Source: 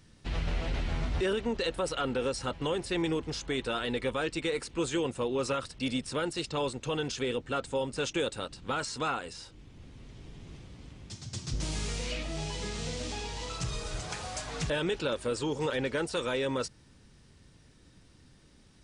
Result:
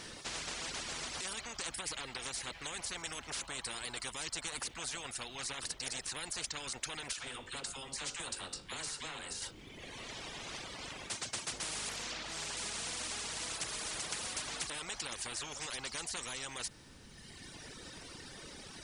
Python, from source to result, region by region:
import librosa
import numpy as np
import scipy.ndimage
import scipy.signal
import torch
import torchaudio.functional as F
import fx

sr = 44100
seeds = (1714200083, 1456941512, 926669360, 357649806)

y = fx.chain(x, sr, fx.comb_fb(f0_hz=50.0, decay_s=0.35, harmonics='all', damping=0.0, mix_pct=70),
    fx.dispersion(late='lows', ms=49.0, hz=550.0), at=(7.13, 9.42))
y = fx.chain(y, sr, fx.lowpass(hz=3500.0, slope=6),
    fx.doppler_dist(depth_ms=0.22), at=(11.89, 12.57))
y = fx.dereverb_blind(y, sr, rt60_s=1.3)
y = fx.low_shelf(y, sr, hz=200.0, db=-11.0)
y = fx.spectral_comp(y, sr, ratio=10.0)
y = F.gain(torch.from_numpy(y), -1.0).numpy()